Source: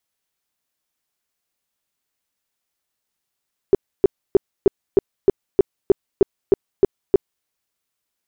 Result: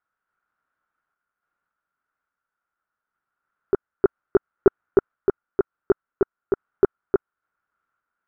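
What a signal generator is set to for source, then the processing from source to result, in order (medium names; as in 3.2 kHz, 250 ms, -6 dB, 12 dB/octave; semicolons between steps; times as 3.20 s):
tone bursts 392 Hz, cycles 7, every 0.31 s, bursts 12, -7 dBFS
random-step tremolo; resonant low-pass 1.4 kHz, resonance Q 9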